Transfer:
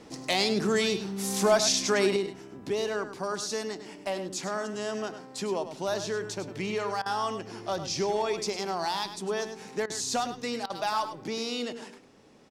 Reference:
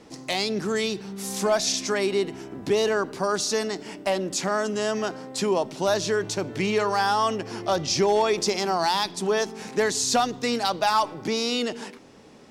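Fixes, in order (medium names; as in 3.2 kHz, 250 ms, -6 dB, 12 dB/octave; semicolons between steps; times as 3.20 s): interpolate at 7.02/9.86/10.66 s, 38 ms; inverse comb 102 ms -10.5 dB; trim 0 dB, from 2.16 s +7.5 dB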